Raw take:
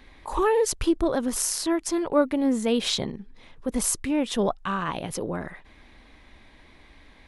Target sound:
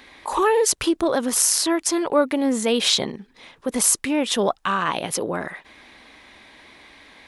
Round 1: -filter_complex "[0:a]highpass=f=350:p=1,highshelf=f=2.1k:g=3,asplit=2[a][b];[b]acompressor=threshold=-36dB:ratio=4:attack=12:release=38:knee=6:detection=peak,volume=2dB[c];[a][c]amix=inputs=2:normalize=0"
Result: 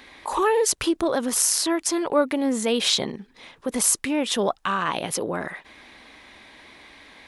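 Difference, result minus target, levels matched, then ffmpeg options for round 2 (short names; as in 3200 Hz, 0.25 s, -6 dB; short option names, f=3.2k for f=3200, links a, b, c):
compressor: peak gain reduction +6.5 dB
-filter_complex "[0:a]highpass=f=350:p=1,highshelf=f=2.1k:g=3,asplit=2[a][b];[b]acompressor=threshold=-27.5dB:ratio=4:attack=12:release=38:knee=6:detection=peak,volume=2dB[c];[a][c]amix=inputs=2:normalize=0"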